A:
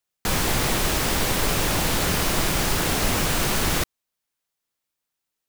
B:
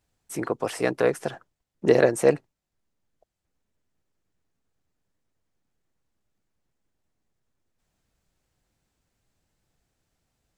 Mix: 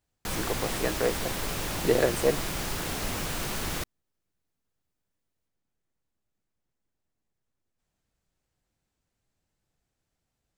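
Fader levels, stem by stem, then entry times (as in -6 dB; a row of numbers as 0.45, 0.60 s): -9.5, -5.5 dB; 0.00, 0.00 s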